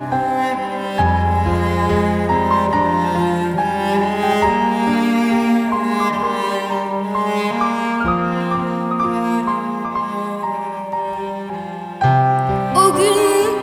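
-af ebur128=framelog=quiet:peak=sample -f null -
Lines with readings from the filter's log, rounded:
Integrated loudness:
  I:         -17.7 LUFS
  Threshold: -27.8 LUFS
Loudness range:
  LRA:         4.0 LU
  Threshold: -38.2 LUFS
  LRA low:   -20.8 LUFS
  LRA high:  -16.8 LUFS
Sample peak:
  Peak:       -1.5 dBFS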